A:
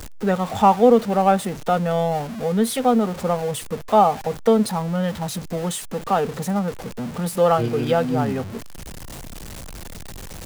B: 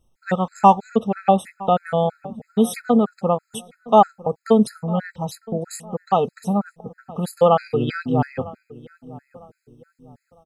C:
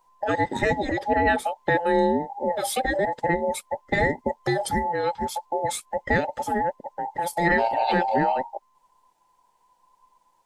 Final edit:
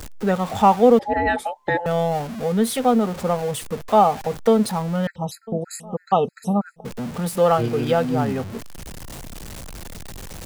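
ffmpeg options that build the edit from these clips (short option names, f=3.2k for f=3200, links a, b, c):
-filter_complex "[0:a]asplit=3[a][b][c];[a]atrim=end=0.992[d];[2:a]atrim=start=0.988:end=1.862[e];[b]atrim=start=1.858:end=5.072[f];[1:a]atrim=start=5.068:end=6.852[g];[c]atrim=start=6.848[h];[d][e]acrossfade=d=0.004:c1=hsin:c2=hsin[i];[i][f]acrossfade=d=0.004:c1=hsin:c2=hsin[j];[j][g]acrossfade=d=0.004:c1=hsin:c2=hsin[k];[k][h]acrossfade=d=0.004:c1=hsin:c2=hsin"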